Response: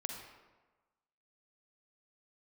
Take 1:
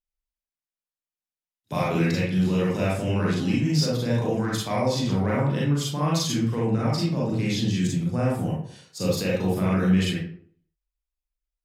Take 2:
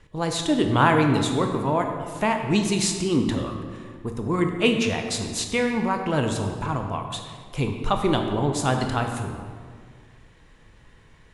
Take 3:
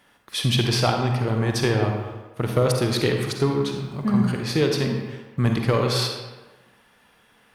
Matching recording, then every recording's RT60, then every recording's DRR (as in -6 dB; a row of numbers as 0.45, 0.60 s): 3; 0.55, 1.9, 1.3 s; -6.0, 4.0, 2.5 dB